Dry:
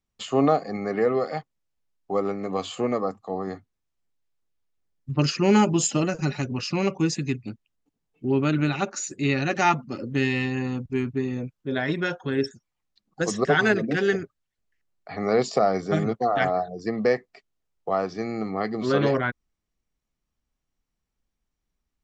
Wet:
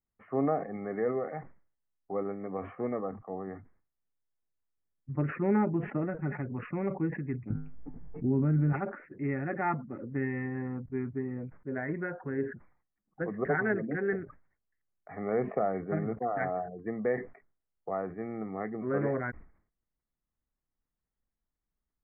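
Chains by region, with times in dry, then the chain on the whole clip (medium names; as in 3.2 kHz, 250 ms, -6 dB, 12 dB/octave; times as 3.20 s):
7.50–8.73 s: tilt EQ -3.5 dB/octave + feedback comb 51 Hz, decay 0.28 s, harmonics odd, mix 70% + level flattener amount 70%
whole clip: steep low-pass 2.1 kHz 72 dB/octave; dynamic bell 1.1 kHz, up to -4 dB, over -40 dBFS, Q 1.9; decay stretcher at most 120 dB/s; trim -8 dB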